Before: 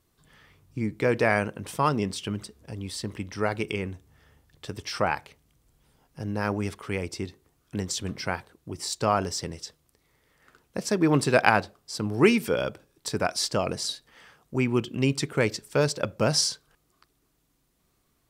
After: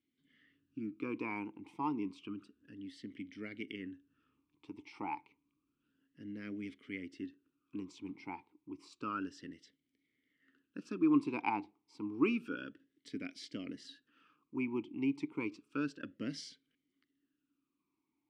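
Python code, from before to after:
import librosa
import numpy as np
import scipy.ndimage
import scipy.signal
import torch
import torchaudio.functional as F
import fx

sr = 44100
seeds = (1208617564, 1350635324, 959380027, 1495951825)

y = fx.vowel_sweep(x, sr, vowels='i-u', hz=0.3)
y = F.gain(torch.from_numpy(y), -1.0).numpy()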